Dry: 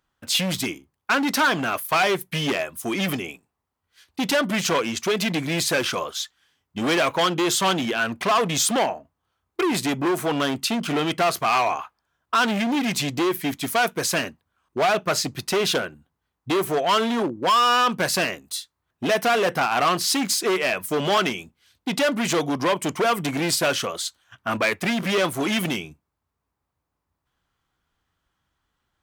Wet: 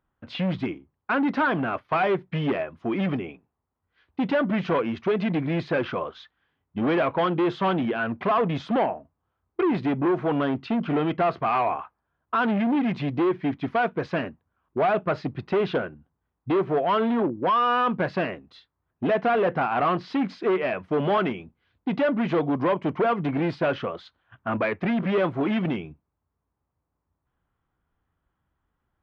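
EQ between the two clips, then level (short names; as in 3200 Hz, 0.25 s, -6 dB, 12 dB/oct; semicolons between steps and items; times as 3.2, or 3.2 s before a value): air absorption 310 m; tape spacing loss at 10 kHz 33 dB; high shelf 5500 Hz +6.5 dB; +2.0 dB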